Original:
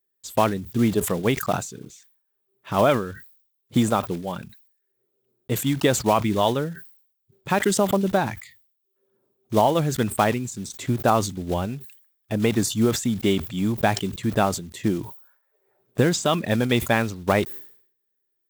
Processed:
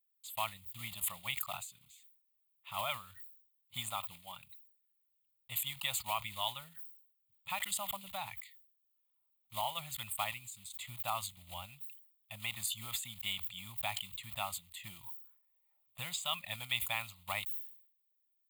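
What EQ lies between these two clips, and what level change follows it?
passive tone stack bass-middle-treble 10-0-10; low shelf 450 Hz -9 dB; fixed phaser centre 1600 Hz, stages 6; -2.5 dB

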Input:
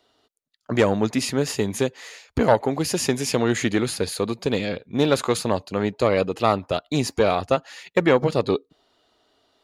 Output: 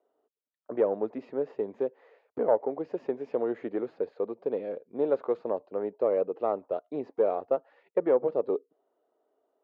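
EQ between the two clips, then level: ladder band-pass 590 Hz, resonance 35%; air absorption 110 m; low shelf 490 Hz +7.5 dB; 0.0 dB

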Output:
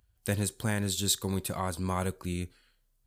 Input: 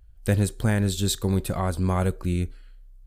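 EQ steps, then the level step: HPF 90 Hz 12 dB/oct; bell 980 Hz +4.5 dB 0.4 oct; high shelf 2100 Hz +8.5 dB; -7.5 dB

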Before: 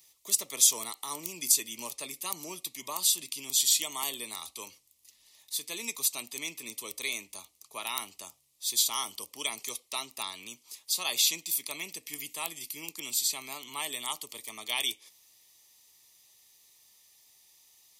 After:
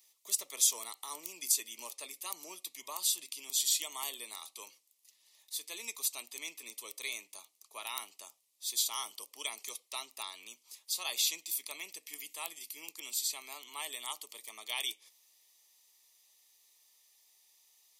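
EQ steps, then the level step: HPF 410 Hz 12 dB/oct; -5.5 dB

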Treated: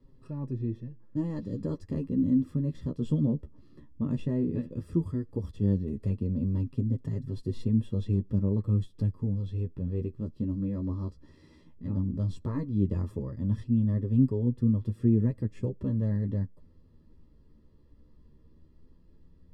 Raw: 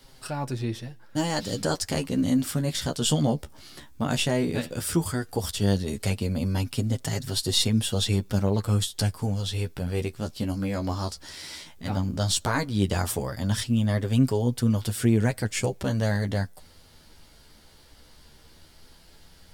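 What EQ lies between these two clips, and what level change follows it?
running mean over 59 samples; bell 260 Hz +2.5 dB 0.78 oct; -2.0 dB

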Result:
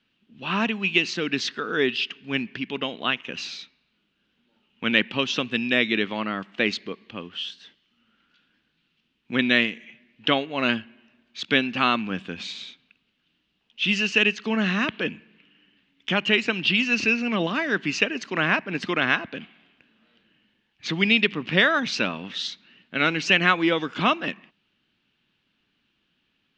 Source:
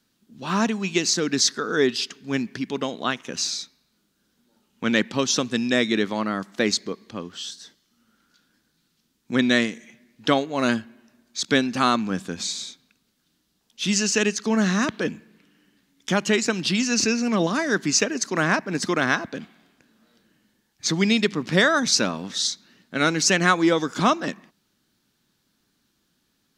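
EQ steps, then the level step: synth low-pass 2800 Hz, resonance Q 4.5; -3.5 dB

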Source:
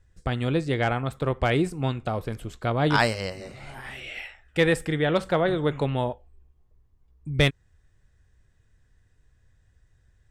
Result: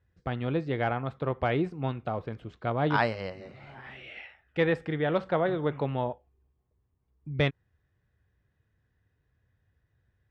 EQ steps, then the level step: HPF 86 Hz 12 dB/oct; dynamic EQ 850 Hz, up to +3 dB, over -34 dBFS, Q 0.91; air absorption 230 m; -4.5 dB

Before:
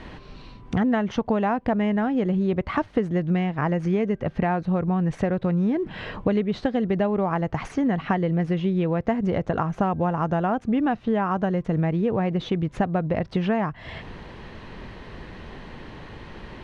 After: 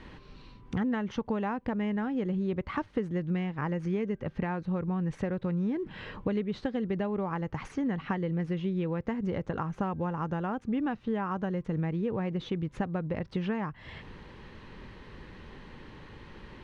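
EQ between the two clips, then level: bell 680 Hz -11.5 dB 0.21 oct; -7.5 dB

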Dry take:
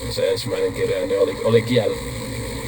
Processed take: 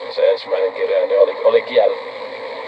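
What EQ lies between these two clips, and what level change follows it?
resonant high-pass 650 Hz, resonance Q 4.9; LPF 3900 Hz 24 dB/oct; +1.5 dB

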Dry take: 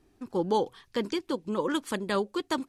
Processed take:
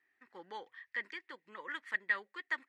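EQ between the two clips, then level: band-pass 1900 Hz, Q 13; +10.5 dB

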